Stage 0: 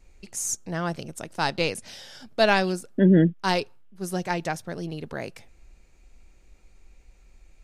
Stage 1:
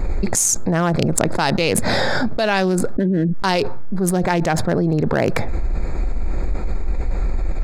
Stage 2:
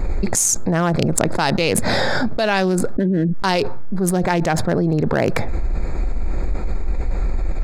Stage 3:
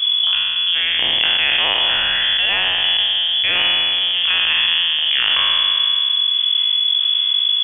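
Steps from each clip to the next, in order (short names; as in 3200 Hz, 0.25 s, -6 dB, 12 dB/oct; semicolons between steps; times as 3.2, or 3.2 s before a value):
Wiener smoothing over 15 samples; fast leveller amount 100%; gain -3 dB
nothing audible
spectral trails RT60 2.65 s; inverted band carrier 3400 Hz; gain -4 dB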